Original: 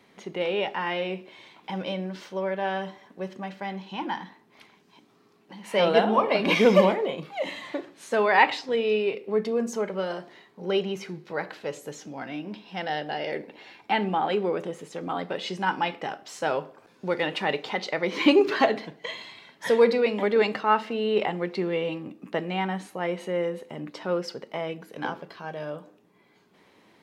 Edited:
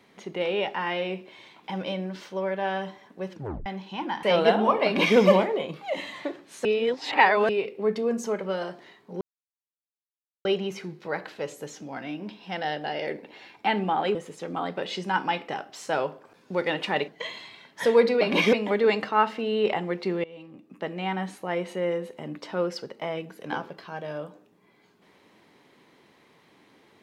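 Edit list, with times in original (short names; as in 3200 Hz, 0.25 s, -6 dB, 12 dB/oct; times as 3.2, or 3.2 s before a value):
3.32 tape stop 0.34 s
4.23–5.72 cut
6.34–6.66 copy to 20.05
8.14–8.98 reverse
10.7 insert silence 1.24 s
14.4–14.68 cut
17.61–18.92 cut
21.76–22.78 fade in, from -22 dB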